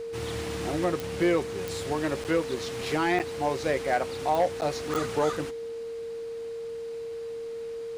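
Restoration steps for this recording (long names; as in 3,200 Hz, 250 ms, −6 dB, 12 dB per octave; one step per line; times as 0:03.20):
clipped peaks rebuilt −16.5 dBFS
click removal
notch filter 460 Hz, Q 30
repair the gap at 0:02.24/0:03.19/0:04.61/0:04.94, 8.6 ms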